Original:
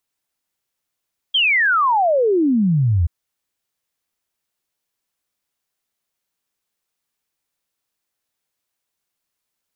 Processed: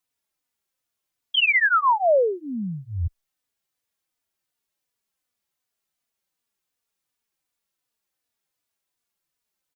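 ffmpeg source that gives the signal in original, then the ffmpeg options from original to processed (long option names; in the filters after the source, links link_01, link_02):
-f lavfi -i "aevalsrc='0.224*clip(min(t,1.73-t)/0.01,0,1)*sin(2*PI*3300*1.73/log(78/3300)*(exp(log(78/3300)*t/1.73)-1))':duration=1.73:sample_rate=44100"
-filter_complex "[0:a]asplit=2[link_01][link_02];[link_02]adelay=3.4,afreqshift=-2.7[link_03];[link_01][link_03]amix=inputs=2:normalize=1"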